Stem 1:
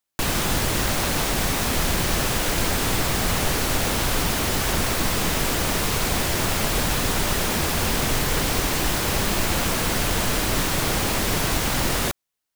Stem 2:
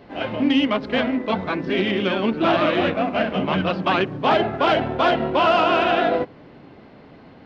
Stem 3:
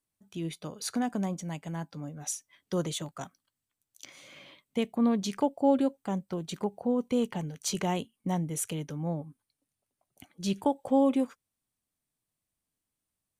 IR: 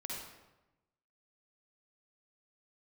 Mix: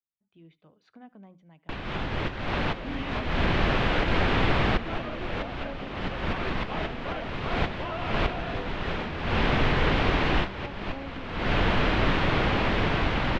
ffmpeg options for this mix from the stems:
-filter_complex "[0:a]dynaudnorm=framelen=700:gausssize=5:maxgain=4dB,adelay=1500,volume=-3dB,asplit=2[link_01][link_02];[link_02]volume=-17.5dB[link_03];[1:a]adelay=2450,volume=-18.5dB[link_04];[2:a]bandreject=frequency=60:width_type=h:width=6,bandreject=frequency=120:width_type=h:width=6,bandreject=frequency=180:width_type=h:width=6,bandreject=frequency=240:width_type=h:width=6,bandreject=frequency=300:width_type=h:width=6,volume=-18dB,asplit=3[link_05][link_06][link_07];[link_06]volume=-22dB[link_08];[link_07]apad=whole_len=619829[link_09];[link_01][link_09]sidechaincompress=threshold=-57dB:ratio=8:attack=6:release=261[link_10];[link_03][link_08]amix=inputs=2:normalize=0,aecho=0:1:74:1[link_11];[link_10][link_04][link_05][link_11]amix=inputs=4:normalize=0,lowpass=frequency=3200:width=0.5412,lowpass=frequency=3200:width=1.3066"

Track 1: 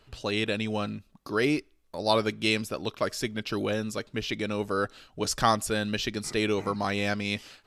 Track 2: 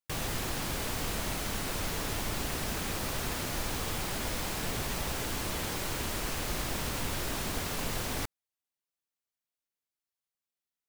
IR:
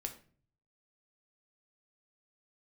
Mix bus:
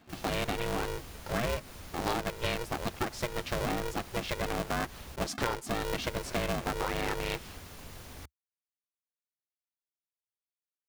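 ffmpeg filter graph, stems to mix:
-filter_complex "[0:a]highshelf=frequency=3400:gain=-10.5,aeval=exprs='val(0)*sgn(sin(2*PI*240*n/s))':channel_layout=same,volume=0.5dB[link_01];[1:a]equalizer=frequency=72:width_type=o:width=0.92:gain=7.5,bandreject=frequency=7900:width=17,volume=-14dB,asplit=3[link_02][link_03][link_04];[link_02]atrim=end=5.16,asetpts=PTS-STARTPTS,afade=type=out:start_time=5.156:duration=0.004:curve=hsin[link_05];[link_03]atrim=start=5.16:end=5.82,asetpts=PTS-STARTPTS,volume=0[link_06];[link_04]atrim=start=5.82,asetpts=PTS-STARTPTS,afade=type=in:duration=0.004:curve=hsin[link_07];[link_05][link_06][link_07]concat=n=3:v=0:a=1[link_08];[link_01][link_08]amix=inputs=2:normalize=0,acompressor=threshold=-28dB:ratio=6"

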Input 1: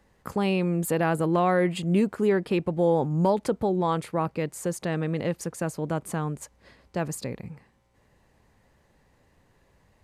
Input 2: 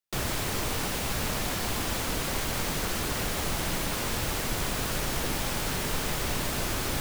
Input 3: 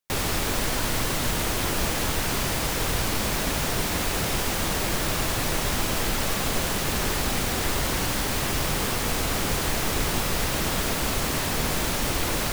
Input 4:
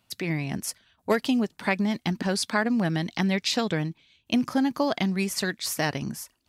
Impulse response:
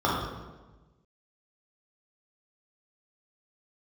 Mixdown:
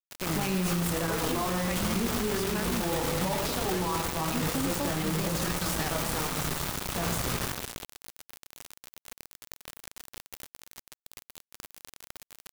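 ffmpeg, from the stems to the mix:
-filter_complex "[0:a]bandreject=frequency=50:width_type=h:width=6,bandreject=frequency=100:width_type=h:width=6,bandreject=frequency=150:width_type=h:width=6,bandreject=frequency=200:width_type=h:width=6,bandreject=frequency=250:width_type=h:width=6,bandreject=frequency=300:width_type=h:width=6,bandreject=frequency=350:width_type=h:width=6,bandreject=frequency=400:width_type=h:width=6,bandreject=frequency=450:width_type=h:width=6,bandreject=frequency=500:width_type=h:width=6,flanger=delay=20:depth=6.7:speed=0.32,volume=-3dB,asplit=3[link_01][link_02][link_03];[link_02]volume=-23dB[link_04];[link_03]volume=-8dB[link_05];[1:a]aeval=exprs='clip(val(0),-1,0.0178)':channel_layout=same,adelay=550,volume=-10.5dB,asplit=2[link_06][link_07];[link_07]volume=-11.5dB[link_08];[2:a]volume=-14dB,asplit=2[link_09][link_10];[link_10]volume=-19dB[link_11];[3:a]volume=-10dB[link_12];[link_01][link_12]amix=inputs=2:normalize=0,aphaser=in_gain=1:out_gain=1:delay=4.7:decay=0.43:speed=0.2:type=sinusoidal,alimiter=limit=-18dB:level=0:latency=1:release=293,volume=0dB[link_13];[4:a]atrim=start_sample=2205[link_14];[link_04][link_08]amix=inputs=2:normalize=0[link_15];[link_15][link_14]afir=irnorm=-1:irlink=0[link_16];[link_05][link_11]amix=inputs=2:normalize=0,aecho=0:1:104|208|312|416|520|624|728:1|0.47|0.221|0.104|0.0488|0.0229|0.0108[link_17];[link_06][link_09][link_13][link_16][link_17]amix=inputs=5:normalize=0,acrusher=bits=4:mix=0:aa=0.000001,alimiter=limit=-21.5dB:level=0:latency=1:release=11"

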